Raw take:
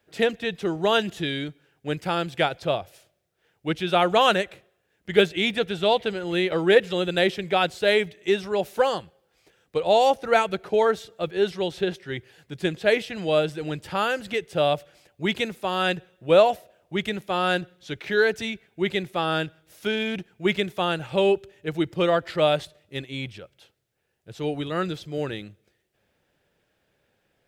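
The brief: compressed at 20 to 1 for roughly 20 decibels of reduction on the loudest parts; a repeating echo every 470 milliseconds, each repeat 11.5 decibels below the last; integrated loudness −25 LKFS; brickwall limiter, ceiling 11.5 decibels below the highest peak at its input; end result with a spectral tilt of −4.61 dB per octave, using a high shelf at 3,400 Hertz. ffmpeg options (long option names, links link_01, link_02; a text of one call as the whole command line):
ffmpeg -i in.wav -af "highshelf=frequency=3400:gain=4.5,acompressor=threshold=-31dB:ratio=20,alimiter=level_in=6dB:limit=-24dB:level=0:latency=1,volume=-6dB,aecho=1:1:470|940|1410:0.266|0.0718|0.0194,volume=15.5dB" out.wav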